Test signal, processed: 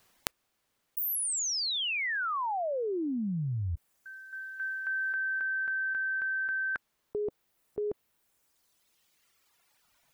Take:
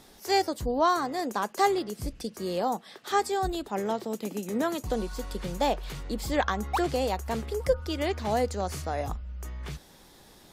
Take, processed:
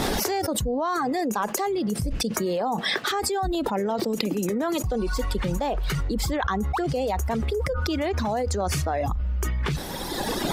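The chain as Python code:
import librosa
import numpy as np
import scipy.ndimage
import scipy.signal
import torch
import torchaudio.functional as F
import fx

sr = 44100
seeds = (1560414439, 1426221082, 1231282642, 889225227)

y = fx.dereverb_blind(x, sr, rt60_s=1.9)
y = fx.high_shelf(y, sr, hz=3300.0, db=-8.5)
y = fx.env_flatten(y, sr, amount_pct=100)
y = y * librosa.db_to_amplitude(-6.0)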